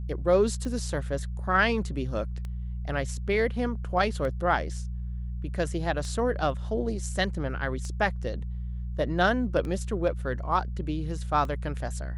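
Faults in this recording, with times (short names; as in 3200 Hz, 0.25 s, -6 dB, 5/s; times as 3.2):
hum 60 Hz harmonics 3 -33 dBFS
tick 33 1/3 rpm -24 dBFS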